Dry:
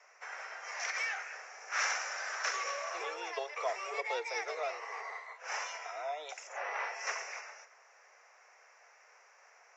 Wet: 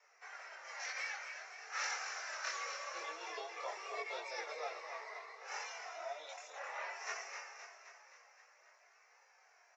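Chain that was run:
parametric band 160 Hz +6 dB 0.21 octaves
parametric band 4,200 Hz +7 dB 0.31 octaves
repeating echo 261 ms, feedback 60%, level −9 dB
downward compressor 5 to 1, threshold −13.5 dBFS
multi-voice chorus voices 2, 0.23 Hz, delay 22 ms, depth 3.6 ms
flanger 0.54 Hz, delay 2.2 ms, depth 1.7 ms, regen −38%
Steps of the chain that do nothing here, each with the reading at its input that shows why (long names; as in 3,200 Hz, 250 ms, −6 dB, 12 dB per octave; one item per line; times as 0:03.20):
parametric band 160 Hz: nothing at its input below 300 Hz
downward compressor, threshold −13.5 dBFS: peak of its input −19.5 dBFS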